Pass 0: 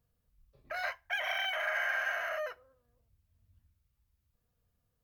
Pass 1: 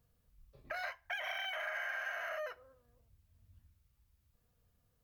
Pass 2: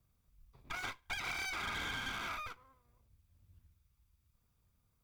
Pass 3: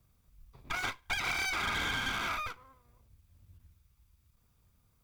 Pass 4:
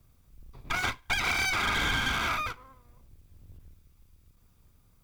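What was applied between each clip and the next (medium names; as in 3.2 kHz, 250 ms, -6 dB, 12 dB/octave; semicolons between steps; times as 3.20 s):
compression 3:1, threshold -44 dBFS, peak gain reduction 11 dB; trim +3.5 dB
comb filter that takes the minimum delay 0.83 ms; saturation -37 dBFS, distortion -17 dB; upward expansion 1.5:1, over -53 dBFS; trim +5.5 dB
endings held to a fixed fall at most 300 dB/s; trim +6.5 dB
octave divider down 2 oct, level +1 dB; trim +5 dB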